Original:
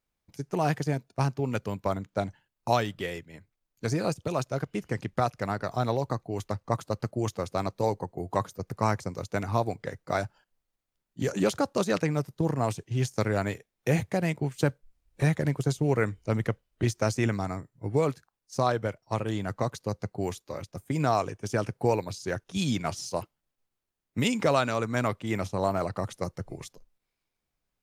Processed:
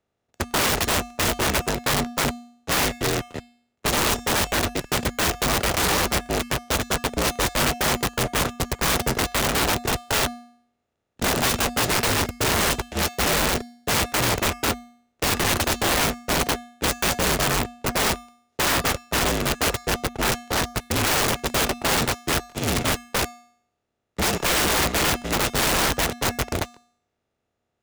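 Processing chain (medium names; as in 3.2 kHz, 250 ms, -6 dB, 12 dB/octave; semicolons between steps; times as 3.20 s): spectral levelling over time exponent 0.2; de-hum 202.9 Hz, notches 8; gate -16 dBFS, range -29 dB; band-stop 1.1 kHz, Q 7.1; waveshaping leveller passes 5; frequency shift -49 Hz; feedback comb 240 Hz, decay 0.6 s, harmonics odd, mix 70%; integer overflow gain 13 dB; trim -2.5 dB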